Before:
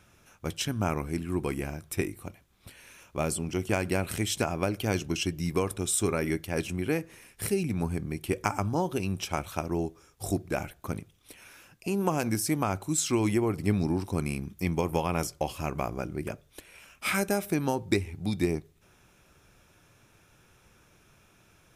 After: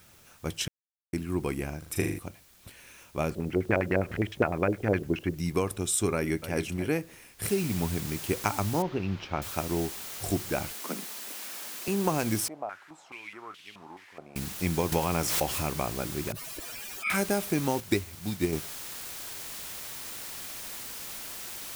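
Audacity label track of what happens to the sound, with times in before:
0.680000	1.130000	mute
1.780000	2.190000	flutter echo walls apart 6.8 m, dies away in 0.58 s
3.300000	5.350000	LFO low-pass square 9.8 Hz 520–1900 Hz
6.140000	6.580000	echo throw 0.28 s, feedback 10%, level -11.5 dB
7.450000	7.450000	noise floor step -59 dB -40 dB
8.820000	9.420000	air absorption 260 m
10.740000	11.880000	steep high-pass 180 Hz 72 dB/oct
12.480000	14.360000	stepped band-pass 4.7 Hz 660–3000 Hz
14.920000	15.750000	backwards sustainer at most 32 dB/s
16.320000	17.100000	spectral contrast raised exponent 2.5
17.800000	18.530000	upward expander, over -36 dBFS

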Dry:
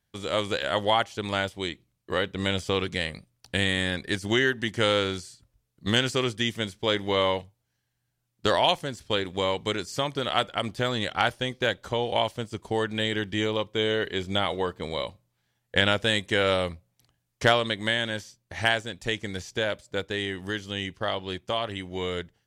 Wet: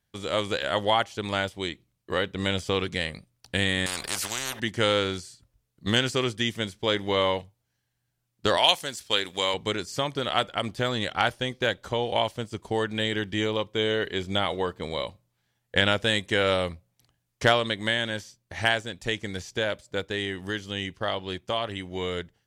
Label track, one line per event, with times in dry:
3.860000	4.600000	spectral compressor 10:1
8.570000	9.540000	tilt +3 dB/oct

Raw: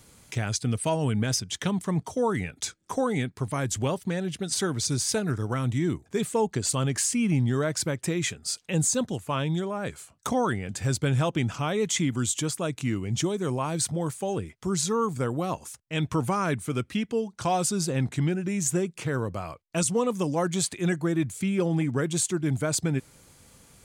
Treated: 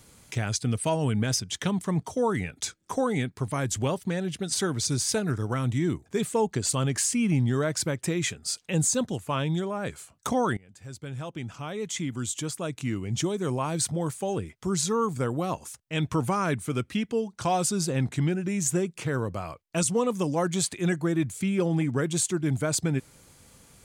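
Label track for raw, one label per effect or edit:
10.570000	13.540000	fade in, from -23 dB

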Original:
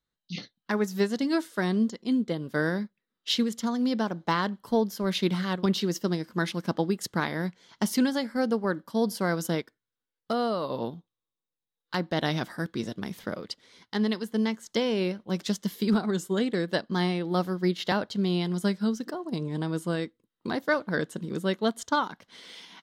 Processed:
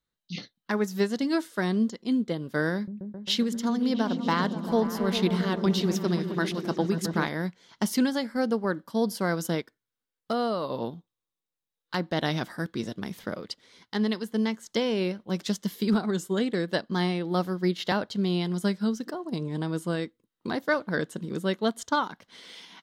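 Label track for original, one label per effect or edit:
2.740000	7.290000	repeats that get brighter 0.133 s, low-pass from 200 Hz, each repeat up 1 oct, level -3 dB

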